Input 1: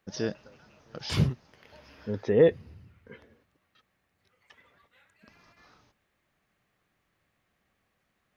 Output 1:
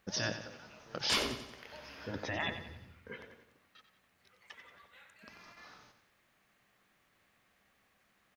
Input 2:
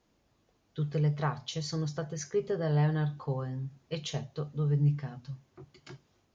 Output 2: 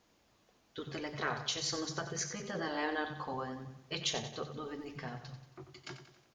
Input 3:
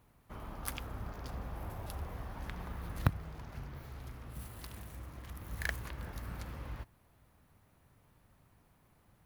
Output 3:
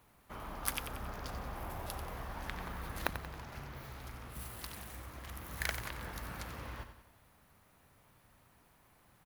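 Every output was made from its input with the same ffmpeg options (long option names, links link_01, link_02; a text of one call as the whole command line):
ffmpeg -i in.wav -filter_complex "[0:a]lowshelf=frequency=460:gain=-7.5,afftfilt=real='re*lt(hypot(re,im),0.0794)':imag='im*lt(hypot(re,im),0.0794)':win_size=1024:overlap=0.75,aeval=exprs='val(0)+0.0001*(sin(2*PI*50*n/s)+sin(2*PI*2*50*n/s)/2+sin(2*PI*3*50*n/s)/3+sin(2*PI*4*50*n/s)/4+sin(2*PI*5*50*n/s)/5)':channel_layout=same,bandreject=frequency=50:width_type=h:width=6,bandreject=frequency=100:width_type=h:width=6,bandreject=frequency=150:width_type=h:width=6,asplit=2[link_01][link_02];[link_02]aecho=0:1:91|182|273|364|455:0.316|0.152|0.0729|0.035|0.0168[link_03];[link_01][link_03]amix=inputs=2:normalize=0,volume=5dB" out.wav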